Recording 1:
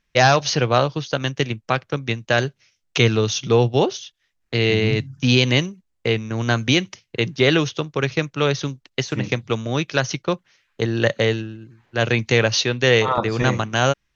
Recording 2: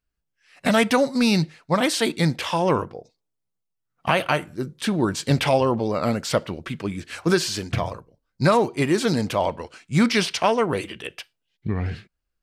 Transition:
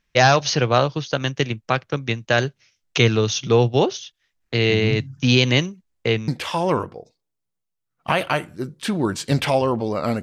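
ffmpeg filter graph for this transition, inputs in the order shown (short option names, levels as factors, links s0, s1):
-filter_complex "[0:a]apad=whole_dur=10.22,atrim=end=10.22,atrim=end=6.282[s0];[1:a]atrim=start=2.268:end=6.21[s1];[s0][s1]acrossfade=d=0.004:c1=hsin:c2=hsin"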